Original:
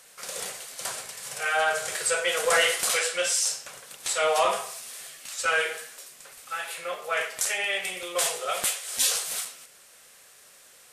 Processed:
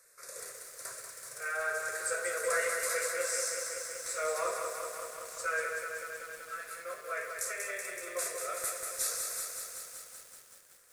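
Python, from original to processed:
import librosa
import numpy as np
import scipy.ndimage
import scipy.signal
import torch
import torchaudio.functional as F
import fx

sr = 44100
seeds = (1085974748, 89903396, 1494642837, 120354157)

y = fx.fixed_phaser(x, sr, hz=830.0, stages=6)
y = fx.echo_crushed(y, sr, ms=189, feedback_pct=80, bits=8, wet_db=-5.0)
y = y * librosa.db_to_amplitude(-8.0)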